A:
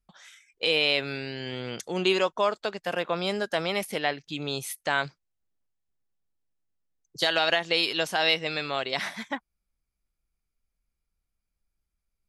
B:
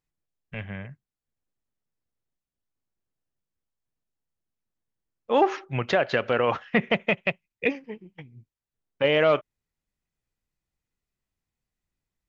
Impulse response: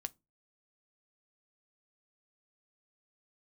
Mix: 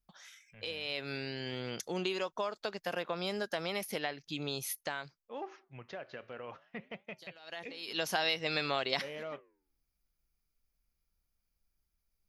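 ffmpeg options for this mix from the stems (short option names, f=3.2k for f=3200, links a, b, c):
-filter_complex "[0:a]acompressor=threshold=-27dB:ratio=6,volume=7.5dB,afade=t=out:st=4.7:d=0.6:silence=0.398107,afade=t=in:st=7.42:d=0.5:silence=0.251189[a];[1:a]flanger=delay=3.9:depth=9:regen=-88:speed=0.56:shape=sinusoidal,volume=-17.5dB,asplit=2[b][c];[c]apad=whole_len=541583[d];[a][d]sidechaincompress=threshold=-57dB:ratio=16:attack=12:release=287[e];[e][b]amix=inputs=2:normalize=0,aexciter=amount=1.2:drive=5.2:freq=4.7k"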